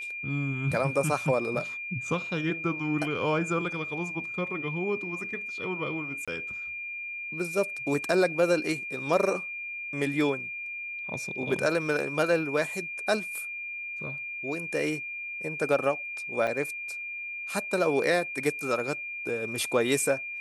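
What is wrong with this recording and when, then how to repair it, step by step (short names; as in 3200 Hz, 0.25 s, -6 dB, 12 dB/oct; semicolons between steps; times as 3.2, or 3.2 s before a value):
tone 2400 Hz -34 dBFS
6.25–6.28 gap 26 ms
16.47–16.48 gap 5.6 ms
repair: notch 2400 Hz, Q 30; interpolate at 6.25, 26 ms; interpolate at 16.47, 5.6 ms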